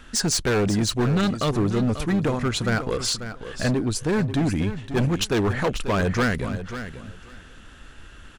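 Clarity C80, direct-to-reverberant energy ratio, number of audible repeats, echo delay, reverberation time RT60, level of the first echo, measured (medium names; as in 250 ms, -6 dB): no reverb, no reverb, 2, 540 ms, no reverb, -11.0 dB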